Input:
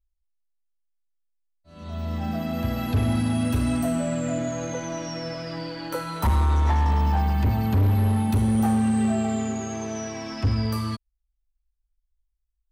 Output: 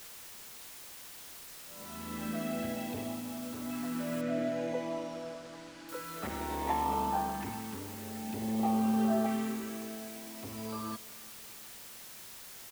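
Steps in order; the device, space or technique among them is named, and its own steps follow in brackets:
shortwave radio (band-pass filter 290–2,700 Hz; amplitude tremolo 0.44 Hz, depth 72%; auto-filter notch saw up 0.54 Hz 530–2,600 Hz; white noise bed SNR 12 dB)
0:04.21–0:05.89: high-frequency loss of the air 95 metres
repeating echo 359 ms, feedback 60%, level −22.5 dB
level −1 dB

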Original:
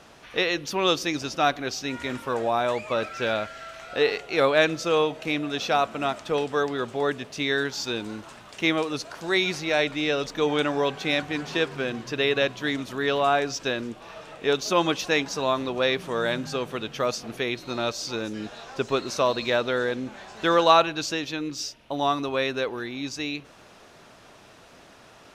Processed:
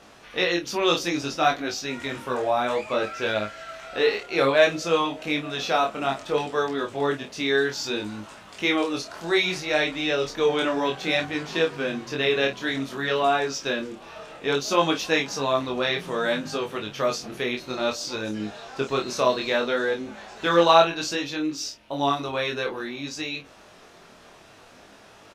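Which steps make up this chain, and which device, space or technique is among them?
double-tracked vocal (double-tracking delay 29 ms −7 dB; chorus effect 0.6 Hz, delay 18.5 ms, depth 5.8 ms)
parametric band 120 Hz −2.5 dB 0.77 octaves
level +3 dB

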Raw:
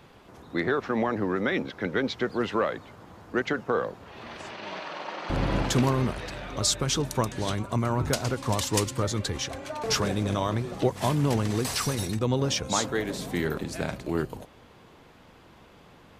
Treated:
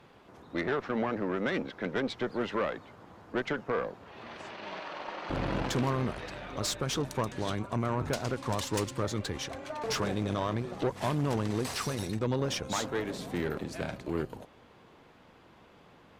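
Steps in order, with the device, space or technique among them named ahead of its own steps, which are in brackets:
tube preamp driven hard (tube saturation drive 22 dB, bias 0.6; low-shelf EQ 110 Hz −6.5 dB; high-shelf EQ 5,200 Hz −7.5 dB)

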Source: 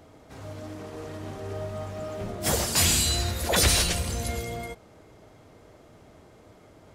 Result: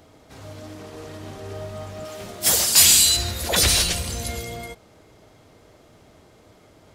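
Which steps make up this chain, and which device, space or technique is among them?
0:02.05–0:03.17: spectral tilt +2 dB per octave
presence and air boost (parametric band 4,000 Hz +4.5 dB 1.6 octaves; high-shelf EQ 9,600 Hz +6 dB)

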